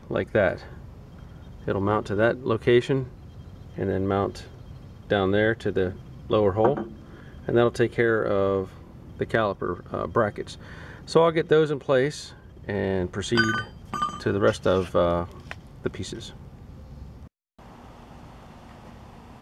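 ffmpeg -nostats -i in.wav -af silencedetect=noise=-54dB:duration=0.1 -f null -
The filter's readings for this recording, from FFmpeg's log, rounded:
silence_start: 17.28
silence_end: 17.59 | silence_duration: 0.31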